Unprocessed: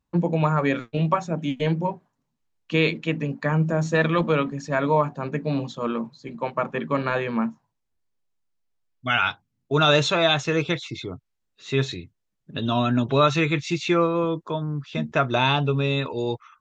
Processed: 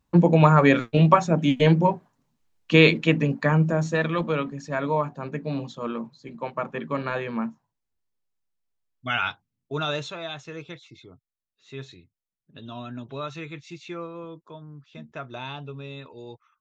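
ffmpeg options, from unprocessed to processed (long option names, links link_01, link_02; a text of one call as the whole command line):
ffmpeg -i in.wav -af "volume=5.5dB,afade=type=out:start_time=3.04:duration=0.98:silence=0.334965,afade=type=out:start_time=9.27:duration=0.9:silence=0.281838" out.wav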